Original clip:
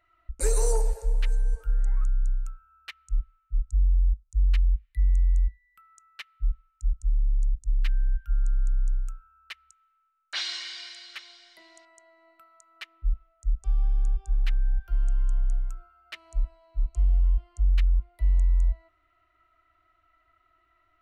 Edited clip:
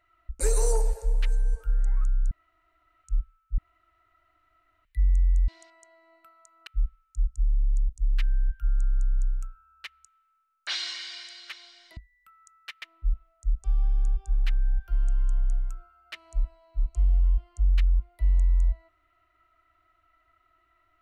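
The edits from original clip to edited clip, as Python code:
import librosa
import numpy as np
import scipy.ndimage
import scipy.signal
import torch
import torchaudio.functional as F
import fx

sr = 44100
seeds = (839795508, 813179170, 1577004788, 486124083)

y = fx.edit(x, sr, fx.room_tone_fill(start_s=2.31, length_s=0.73),
    fx.room_tone_fill(start_s=3.58, length_s=1.27),
    fx.swap(start_s=5.48, length_s=0.85, other_s=11.63, other_length_s=1.19), tone=tone)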